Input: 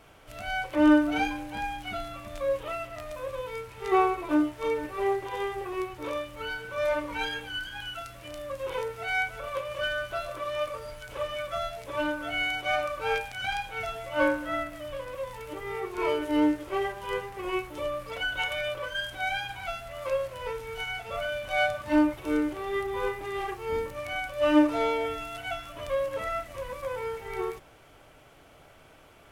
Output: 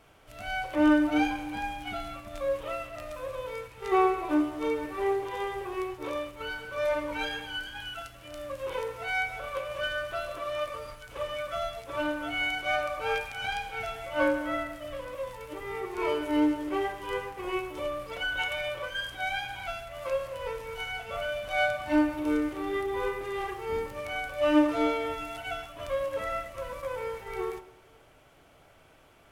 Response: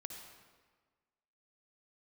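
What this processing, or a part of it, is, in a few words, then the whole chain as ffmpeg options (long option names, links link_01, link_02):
keyed gated reverb: -filter_complex "[0:a]asplit=3[link_01][link_02][link_03];[1:a]atrim=start_sample=2205[link_04];[link_02][link_04]afir=irnorm=-1:irlink=0[link_05];[link_03]apad=whole_len=1292603[link_06];[link_05][link_06]sidechaingate=range=-6dB:threshold=-40dB:ratio=16:detection=peak,volume=4dB[link_07];[link_01][link_07]amix=inputs=2:normalize=0,volume=-7dB"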